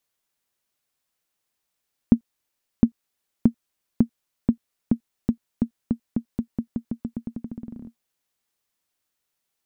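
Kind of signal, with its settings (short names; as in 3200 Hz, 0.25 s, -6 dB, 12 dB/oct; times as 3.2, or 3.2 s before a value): bouncing ball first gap 0.71 s, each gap 0.88, 232 Hz, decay 88 ms -2.5 dBFS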